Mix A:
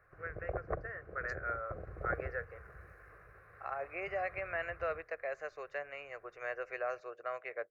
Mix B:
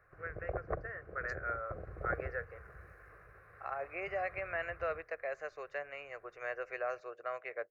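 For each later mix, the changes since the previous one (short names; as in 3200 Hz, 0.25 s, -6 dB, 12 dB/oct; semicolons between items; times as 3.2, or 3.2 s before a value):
none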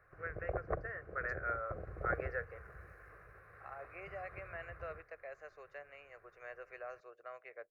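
second voice -9.5 dB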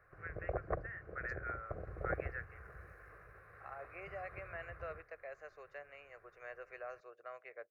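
first voice: add band-pass 2400 Hz, Q 1.3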